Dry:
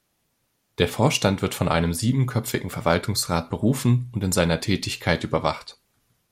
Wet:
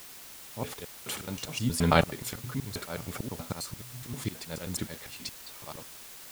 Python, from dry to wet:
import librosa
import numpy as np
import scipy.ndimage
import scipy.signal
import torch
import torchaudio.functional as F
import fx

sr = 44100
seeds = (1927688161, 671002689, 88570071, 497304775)

p1 = fx.block_reorder(x, sr, ms=106.0, group=5)
p2 = fx.auto_swell(p1, sr, attack_ms=635.0)
p3 = fx.quant_dither(p2, sr, seeds[0], bits=6, dither='triangular')
y = p2 + F.gain(torch.from_numpy(p3), -11.0).numpy()